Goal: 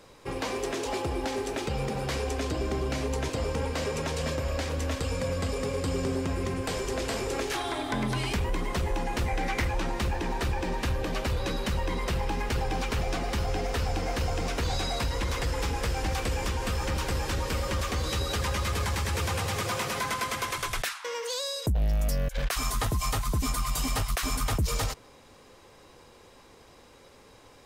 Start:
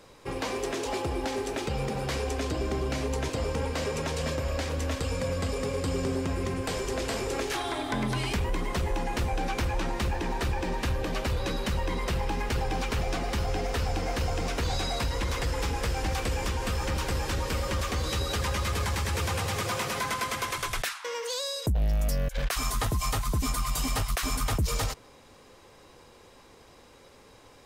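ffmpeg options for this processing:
-filter_complex "[0:a]asettb=1/sr,asplit=3[a][b][c];[a]atrim=end=9.264[d];[b]atrim=start=9.26:end=9.68,asetpts=PTS-STARTPTS,afade=t=in:d=0.004:c=qsin,afade=t=out:st=0.416:d=0.004:c=qsin,equalizer=f=2k:w=7:g=14[e];[c]atrim=start=9.676[f];[d][e]acrossfade=d=0.004:c1=hsin:c2=qsin[g];[g][f]acrossfade=d=0.004:c1=qsin:c2=hsin"

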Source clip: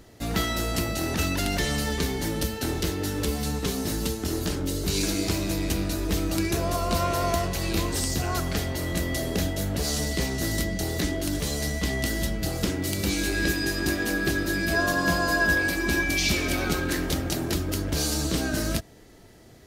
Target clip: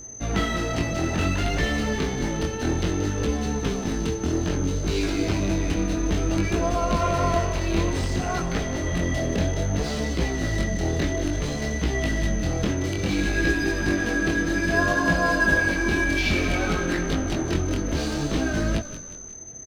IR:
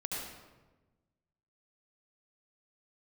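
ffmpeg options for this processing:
-filter_complex "[0:a]adynamicsmooth=sensitivity=7:basefreq=2.2k,aeval=exprs='val(0)+0.0126*sin(2*PI*6200*n/s)':c=same,asplit=5[a][b][c][d][e];[b]adelay=180,afreqshift=-34,volume=-13.5dB[f];[c]adelay=360,afreqshift=-68,volume=-20.6dB[g];[d]adelay=540,afreqshift=-102,volume=-27.8dB[h];[e]adelay=720,afreqshift=-136,volume=-34.9dB[i];[a][f][g][h][i]amix=inputs=5:normalize=0,acrossover=split=3600[j][k];[k]acompressor=threshold=-42dB:ratio=4:attack=1:release=60[l];[j][l]amix=inputs=2:normalize=0,flanger=delay=17.5:depth=7.3:speed=0.59,volume=5.5dB"

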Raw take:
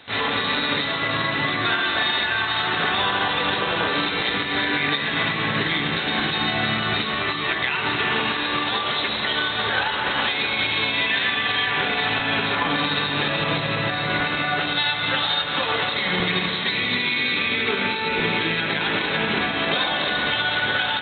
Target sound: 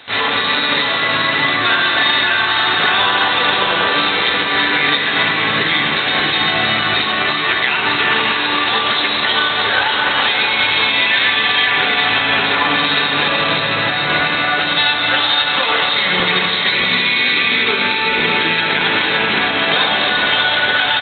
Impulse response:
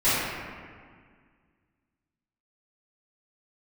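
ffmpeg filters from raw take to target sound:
-af "lowshelf=f=360:g=-8,aecho=1:1:611|1222|1833|2444:0.447|0.138|0.0429|0.0133,volume=7.5dB"

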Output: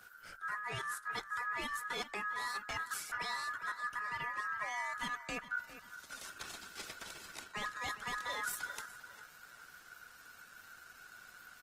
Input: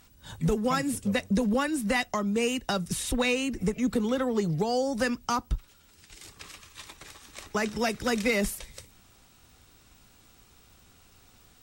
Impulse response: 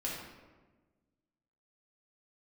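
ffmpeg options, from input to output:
-filter_complex "[0:a]lowshelf=f=84:g=7.5,areverse,acompressor=threshold=-36dB:ratio=8,areverse,aeval=exprs='val(0)*sin(2*PI*1500*n/s)':c=same,aresample=32000,aresample=44100,asplit=2[a][b];[b]adelay=405,lowpass=f=4.6k:p=1,volume=-13dB,asplit=2[c][d];[d]adelay=405,lowpass=f=4.6k:p=1,volume=0.37,asplit=2[e][f];[f]adelay=405,lowpass=f=4.6k:p=1,volume=0.37,asplit=2[g][h];[h]adelay=405,lowpass=f=4.6k:p=1,volume=0.37[i];[c][e][g][i]amix=inputs=4:normalize=0[j];[a][j]amix=inputs=2:normalize=0,afreqshift=-35,volume=1.5dB" -ar 48000 -c:a libopus -b:a 20k

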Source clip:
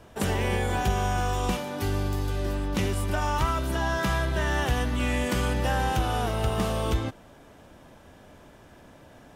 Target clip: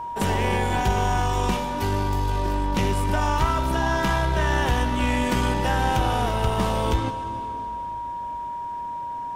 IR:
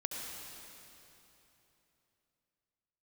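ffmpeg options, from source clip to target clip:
-filter_complex "[0:a]aeval=exprs='0.2*(cos(1*acos(clip(val(0)/0.2,-1,1)))-cos(1*PI/2))+0.0126*(cos(4*acos(clip(val(0)/0.2,-1,1)))-cos(4*PI/2))':c=same,aeval=exprs='val(0)+0.0251*sin(2*PI*950*n/s)':c=same,asplit=2[a][b];[1:a]atrim=start_sample=2205,lowpass=8.5k[c];[b][c]afir=irnorm=-1:irlink=0,volume=-7dB[d];[a][d]amix=inputs=2:normalize=0"

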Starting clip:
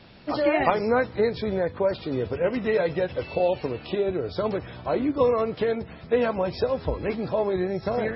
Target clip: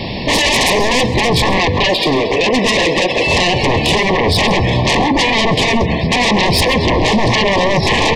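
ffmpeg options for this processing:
-filter_complex "[0:a]asettb=1/sr,asplit=3[a][b][c];[a]atrim=end=0.724[d];[b]atrim=start=0.72:end=1.29,asetpts=PTS-STARTPTS,afade=t=in:d=0.004:c=qsin,afade=t=out:st=0.566:d=0.004:c=qsin,aeval=exprs='if(lt(val(0),0),0.708*val(0),val(0))':c=same[e];[c]atrim=start=1.286[f];[d][e]acrossfade=d=0.004:c1=hsin:c2=qsin[g];[g][f]acrossfade=d=0.004:c1=qsin:c2=hsin,acompressor=threshold=-25dB:ratio=4,asettb=1/sr,asplit=3[h][i][j];[h]atrim=end=1.864[k];[i]atrim=start=1.86:end=3.27,asetpts=PTS-STARTPTS,afade=t=in:d=0.004:c=qsin,afade=t=out:st=1.406:d=0.004:c=qsin,highpass=370[l];[j]atrim=start=3.266[m];[k][l]acrossfade=d=0.004:c1=hsin:c2=qsin[n];[n][m]acrossfade=d=0.004:c1=qsin:c2=hsin,aeval=exprs='0.168*sin(PI/2*7.94*val(0)/0.168)':c=same,asuperstop=centerf=1400:order=12:qfactor=2.2,asplit=2[o][p];[p]adelay=134.1,volume=-16dB,highshelf=f=4k:g=-3.02[q];[o][q]amix=inputs=2:normalize=0,volume=6.5dB"

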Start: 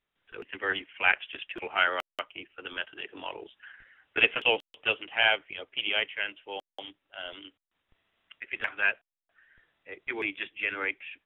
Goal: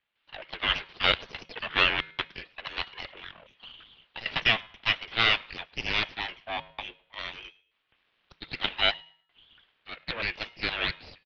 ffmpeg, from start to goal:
-filter_complex "[0:a]asettb=1/sr,asplit=3[a][b][c];[a]atrim=end=3.114[d];[b]atrim=start=3.11:end=4.26,asetpts=PTS-STARTPTS,afade=t=in:d=0.004:c=qsin,afade=t=out:st=1.146:d=0.004:c=qsin,acompressor=threshold=-45dB:ratio=4[e];[c]atrim=start=4.256[f];[d][e]acrossfade=d=0.004:c1=hsin:c2=qsin[g];[g][f]acrossfade=d=0.004:c1=qsin:c2=hsin,asettb=1/sr,asplit=3[h][i][j];[h]atrim=end=6.034[k];[i]atrim=start=6.03:end=7.19,asetpts=PTS-STARTPTS,afade=t=in:d=0.004:c=qsin,afade=t=out:st=1.156:d=0.004:c=qsin,equalizer=f=125:t=o:w=1:g=11,equalizer=f=500:t=o:w=1:g=12,equalizer=f=1k:t=o:w=1:g=-10,equalizer=f=2k:t=o:w=1:g=-5[l];[j]atrim=start=7.186[m];[k][l]acrossfade=d=0.004:c1=hsin:c2=qsin[n];[n][m]acrossfade=d=0.004:c1=qsin:c2=hsin,asplit=2[o][p];[p]adelay=105,lowpass=f=1k:p=1,volume=-23.5dB,asplit=2[q][r];[r]adelay=105,lowpass=f=1k:p=1,volume=0.4,asplit=2[s][t];[t]adelay=105,lowpass=f=1k:p=1,volume=0.4[u];[o][q][s][u]amix=inputs=4:normalize=0,aeval=exprs='(tanh(6.31*val(0)+0.4)-tanh(0.4))/6.31':c=same,bandreject=f=390.9:t=h:w=4,bandreject=f=781.8:t=h:w=4,bandreject=f=1.1727k:t=h:w=4,bandreject=f=1.5636k:t=h:w=4,bandreject=f=1.9545k:t=h:w=4,bandreject=f=2.3454k:t=h:w=4,bandreject=f=2.7363k:t=h:w=4,bandreject=f=3.1272k:t=h:w=4,bandreject=f=3.5181k:t=h:w=4,bandreject=f=3.909k:t=h:w=4,bandreject=f=4.2999k:t=h:w=4,bandreject=f=4.6908k:t=h:w=4,bandreject=f=5.0817k:t=h:w=4,bandreject=f=5.4726k:t=h:w=4,bandreject=f=5.8635k:t=h:w=4,bandreject=f=6.2544k:t=h:w=4,bandreject=f=6.6453k:t=h:w=4,bandreject=f=7.0362k:t=h:w=4,bandreject=f=7.4271k:t=h:w=4,bandreject=f=7.818k:t=h:w=4,bandreject=f=8.2089k:t=h:w=4,bandreject=f=8.5998k:t=h:w=4,bandreject=f=8.9907k:t=h:w=4,bandreject=f=9.3816k:t=h:w=4,bandreject=f=9.7725k:t=h:w=4,bandreject=f=10.1634k:t=h:w=4,bandreject=f=10.5543k:t=h:w=4,bandreject=f=10.9452k:t=h:w=4,bandreject=f=11.3361k:t=h:w=4,bandreject=f=11.727k:t=h:w=4,bandreject=f=12.1179k:t=h:w=4,bandreject=f=12.5088k:t=h:w=4,bandreject=f=12.8997k:t=h:w=4,aeval=exprs='abs(val(0))':c=same,crystalizer=i=8.5:c=0,highpass=f=180:t=q:w=0.5412,highpass=f=180:t=q:w=1.307,lowpass=f=3.5k:t=q:w=0.5176,lowpass=f=3.5k:t=q:w=0.7071,lowpass=f=3.5k:t=q:w=1.932,afreqshift=-230,volume=1.5dB"

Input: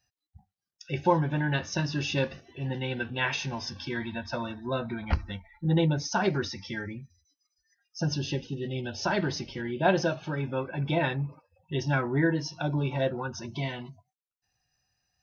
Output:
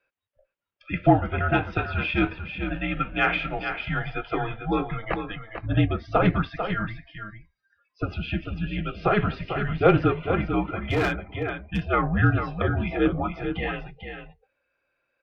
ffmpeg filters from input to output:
-filter_complex "[0:a]asplit=2[a][b];[b]aecho=0:1:445:0.398[c];[a][c]amix=inputs=2:normalize=0,highpass=f=260:t=q:w=0.5412,highpass=f=260:t=q:w=1.307,lowpass=f=3.2k:t=q:w=0.5176,lowpass=f=3.2k:t=q:w=0.7071,lowpass=f=3.2k:t=q:w=1.932,afreqshift=-210,asettb=1/sr,asplit=3[d][e][f];[d]atrim=end=10.784[g];[e]atrim=start=10.78:end=11.83,asetpts=PTS-STARTPTS,afade=t=in:d=0.004:c=qsin,afade=t=out:st=1.046:d=0.004:c=qsin,asoftclip=type=hard:threshold=-26dB[h];[f]atrim=start=11.826[i];[g][h]acrossfade=d=0.004:c1=hsin:c2=qsin[j];[j][i]acrossfade=d=0.004:c1=qsin:c2=hsin,acontrast=81"

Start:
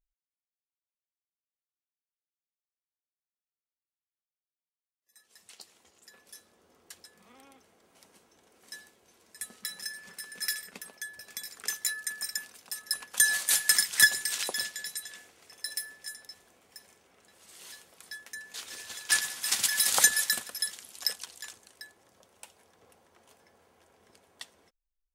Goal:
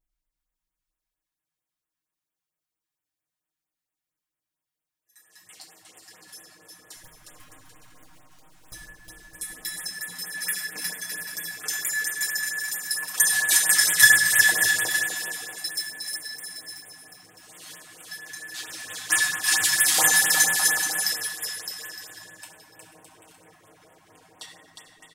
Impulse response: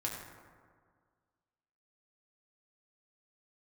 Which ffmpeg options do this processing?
-filter_complex "[0:a]asettb=1/sr,asplit=3[a][b][c];[a]atrim=end=6.964[d];[b]atrim=start=6.96:end=8.73,asetpts=PTS-STARTPTS,afade=t=in:d=0.004:c=qsin,afade=t=out:st=1.766:d=0.004:c=qsin,aeval=exprs='abs(val(0))':c=same[e];[c]atrim=start=8.726[f];[d][e]acrossfade=d=0.004:c1=hsin:c2=qsin[g];[g][f]acrossfade=d=0.004:c1=qsin:c2=hsin,aecho=1:1:6.5:0.77,aecho=1:1:360|612|788.4|911.9|998.3:0.631|0.398|0.251|0.158|0.1[h];[1:a]atrim=start_sample=2205,afade=t=out:st=0.39:d=0.01,atrim=end_sample=17640[i];[h][i]afir=irnorm=-1:irlink=0,afftfilt=real='re*(1-between(b*sr/1024,390*pow(5300/390,0.5+0.5*sin(2*PI*4.4*pts/sr))/1.41,390*pow(5300/390,0.5+0.5*sin(2*PI*4.4*pts/sr))*1.41))':imag='im*(1-between(b*sr/1024,390*pow(5300/390,0.5+0.5*sin(2*PI*4.4*pts/sr))/1.41,390*pow(5300/390,0.5+0.5*sin(2*PI*4.4*pts/sr))*1.41))':win_size=1024:overlap=0.75,volume=2.5dB"

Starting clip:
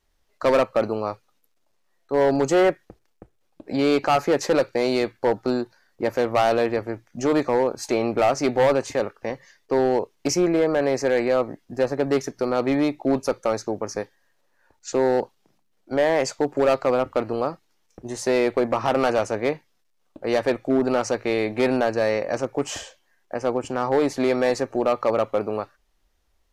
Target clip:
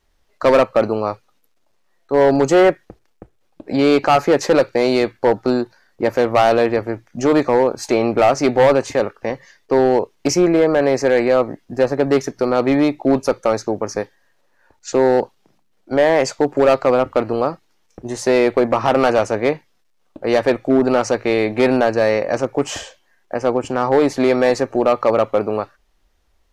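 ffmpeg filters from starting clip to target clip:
-af "highshelf=f=6.1k:g=-4.5,volume=6dB"

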